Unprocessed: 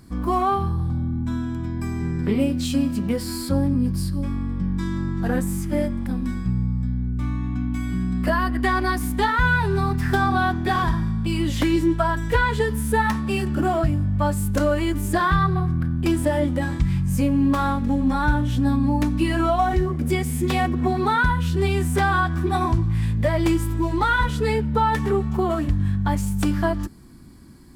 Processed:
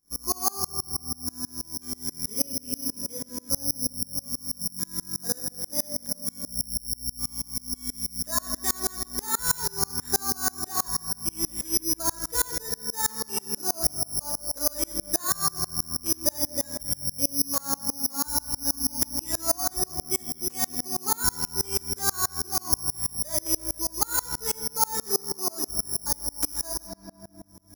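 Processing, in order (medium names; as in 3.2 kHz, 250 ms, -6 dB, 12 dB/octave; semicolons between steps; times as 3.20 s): treble shelf 4 kHz +10.5 dB; careless resampling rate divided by 8×, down filtered, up zero stuff; graphic EQ 125/500/1000/4000/8000 Hz -5/+5/+4/-6/+5 dB; on a send at -4.5 dB: reverberation RT60 2.8 s, pre-delay 6 ms; on the sum: sawtooth tremolo in dB swelling 6.2 Hz, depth 31 dB; trim -10 dB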